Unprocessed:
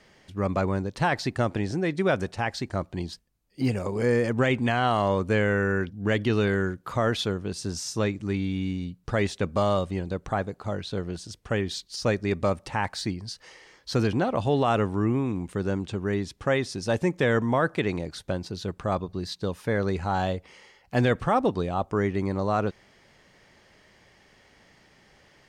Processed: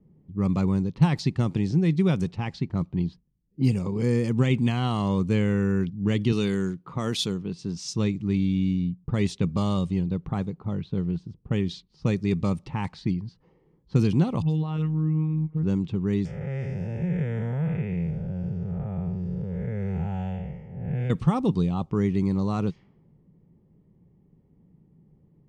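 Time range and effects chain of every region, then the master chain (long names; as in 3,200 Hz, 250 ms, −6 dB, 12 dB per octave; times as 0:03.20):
0:06.32–0:07.94: high-pass filter 200 Hz 6 dB per octave + high-shelf EQ 4,300 Hz +8.5 dB
0:14.42–0:15.63: downward compressor 2 to 1, threshold −29 dBFS + all-pass dispersion highs, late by 85 ms, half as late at 2,400 Hz + phases set to zero 156 Hz
0:16.25–0:21.10: spectrum smeared in time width 286 ms + phaser with its sweep stopped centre 1,100 Hz, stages 6 + envelope flattener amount 50%
whole clip: low-pass that shuts in the quiet parts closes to 420 Hz, open at −21.5 dBFS; graphic EQ with 15 bands 160 Hz +12 dB, 630 Hz −12 dB, 1,600 Hz −12 dB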